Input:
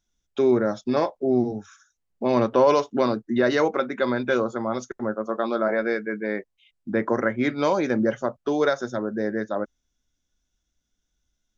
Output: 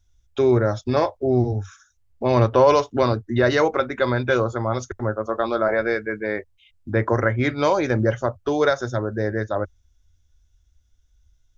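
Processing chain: resonant low shelf 130 Hz +12.5 dB, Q 3; trim +3.5 dB

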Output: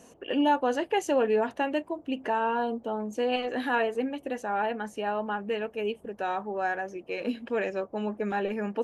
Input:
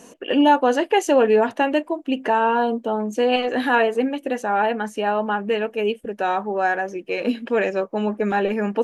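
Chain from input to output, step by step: band noise 49–730 Hz -52 dBFS; trim -8.5 dB

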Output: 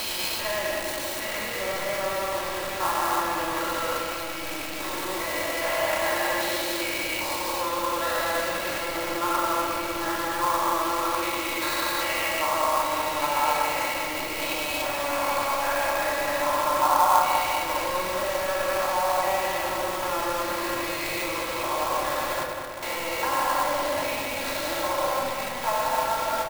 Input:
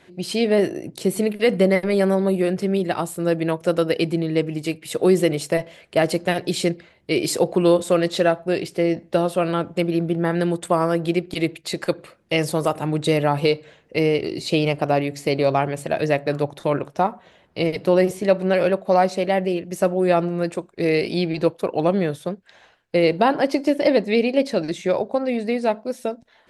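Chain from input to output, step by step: spectrogram pixelated in time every 400 ms; comb 3.6 ms, depth 86%; peak limiter -27 dBFS, peak gain reduction 18.5 dB; resonant high-pass 1 kHz, resonance Q 4.9; bit crusher 7-bit; filtered feedback delay 196 ms, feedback 64%, low-pass 4.1 kHz, level -6 dB; simulated room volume 2600 m³, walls furnished, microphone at 2.9 m; sampling jitter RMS 0.028 ms; trim +8.5 dB

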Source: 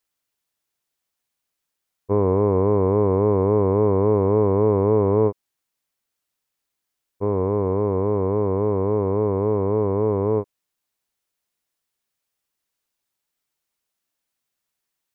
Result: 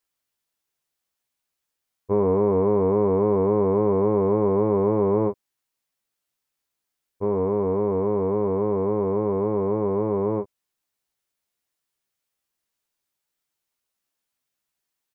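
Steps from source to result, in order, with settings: doubling 15 ms -5.5 dB; trim -2.5 dB

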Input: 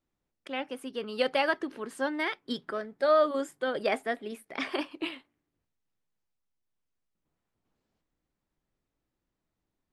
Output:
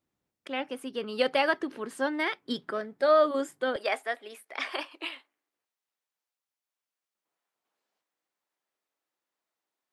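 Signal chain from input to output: high-pass 75 Hz 12 dB/octave, from 3.76 s 620 Hz; trim +1.5 dB

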